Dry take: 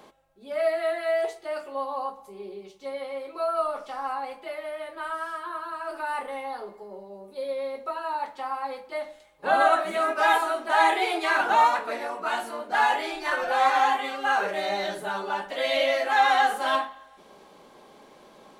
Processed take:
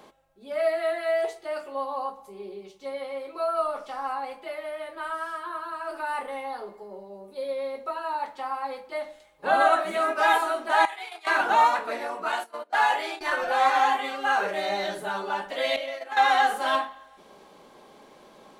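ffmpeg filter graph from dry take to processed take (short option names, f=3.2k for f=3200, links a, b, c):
-filter_complex "[0:a]asettb=1/sr,asplit=3[a][b][c];[a]atrim=end=10.854[d];[b]atrim=start=10.85:end=11.27,asetpts=PTS-STARTPTS,afade=t=in:d=0.004:c=qsin,afade=t=out:st=0.416:d=0.004:c=qsin,agate=range=-16dB:threshold=-27dB:ratio=16:release=100:detection=peak,highpass=890,acompressor=threshold=-36dB:ratio=3:attack=3.2:release=140:knee=1:detection=peak[e];[c]atrim=start=11.266[f];[d][e]acrossfade=d=0.004:c1=hsin:c2=qsin[g];[g][f]acrossfade=d=0.004:c1=qsin:c2=hsin,asettb=1/sr,asplit=3[h][i][j];[h]atrim=end=12.324[k];[i]atrim=start=12.32:end=13.21,asetpts=PTS-STARTPTS,afade=t=in:d=0.004:c=qsin,afade=t=out:st=0.886:d=0.004:c=qsin,agate=range=-19dB:threshold=-35dB:ratio=16:release=100:detection=peak,highpass=370[l];[j]atrim=start=13.206[m];[k][l]acrossfade=d=0.004:c1=hsin:c2=qsin[n];[n][m]acrossfade=d=0.004:c1=qsin:c2=hsin,asettb=1/sr,asplit=3[o][p][q];[o]atrim=end=15.764[r];[p]atrim=start=15.76:end=16.17,asetpts=PTS-STARTPTS,afade=t=in:d=0.004:c=qsin,afade=t=out:st=0.406:d=0.004:c=qsin,agate=range=-14dB:threshold=-25dB:ratio=16:release=100:detection=peak,acompressor=threshold=-30dB:ratio=5:attack=3.2:release=140:knee=1:detection=peak[s];[q]atrim=start=16.166[t];[r][s]acrossfade=d=0.004:c1=hsin:c2=qsin[u];[u][t]acrossfade=d=0.004:c1=qsin:c2=hsin"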